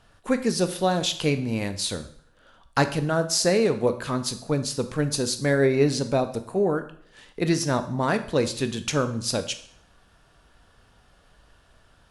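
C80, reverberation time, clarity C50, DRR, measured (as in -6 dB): 16.0 dB, 0.60 s, 12.5 dB, 9.0 dB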